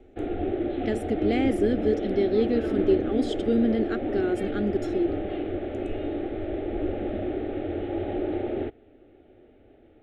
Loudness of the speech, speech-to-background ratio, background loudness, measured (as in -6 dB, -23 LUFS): -27.0 LUFS, 3.0 dB, -30.0 LUFS